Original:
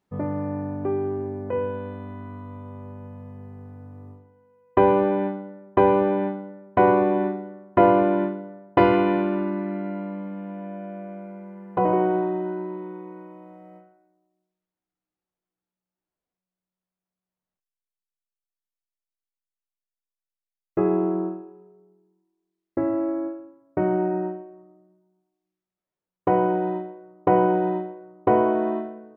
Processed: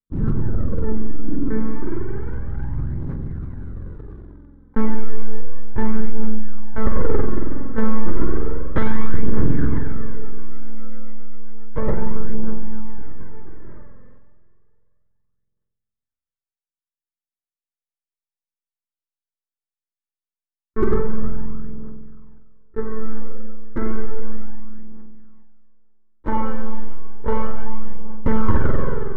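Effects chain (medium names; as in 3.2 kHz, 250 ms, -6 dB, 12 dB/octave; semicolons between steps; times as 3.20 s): pitch bend over the whole clip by -4.5 st ending unshifted; gate with hold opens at -47 dBFS; monotone LPC vocoder at 8 kHz 220 Hz; treble shelf 2.8 kHz +9.5 dB; static phaser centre 2.6 kHz, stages 6; spring tank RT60 2.1 s, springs 46 ms, chirp 30 ms, DRR -0.5 dB; phaser 0.32 Hz, delay 4 ms, feedback 53%; waveshaping leveller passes 1; decay stretcher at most 26 dB/s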